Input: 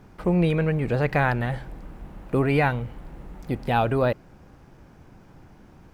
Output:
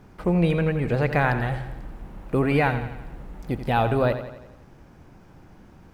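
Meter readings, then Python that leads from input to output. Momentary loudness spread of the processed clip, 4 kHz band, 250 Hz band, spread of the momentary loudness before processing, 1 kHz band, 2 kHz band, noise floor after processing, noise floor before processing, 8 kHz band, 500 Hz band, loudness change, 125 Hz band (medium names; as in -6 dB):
19 LU, +0.5 dB, +0.5 dB, 21 LU, +0.5 dB, +0.5 dB, -50 dBFS, -51 dBFS, no reading, +0.5 dB, +0.5 dB, +0.5 dB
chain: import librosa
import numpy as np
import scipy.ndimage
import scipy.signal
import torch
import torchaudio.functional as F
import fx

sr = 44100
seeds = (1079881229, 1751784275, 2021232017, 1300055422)

y = fx.echo_feedback(x, sr, ms=86, feedback_pct=54, wet_db=-11)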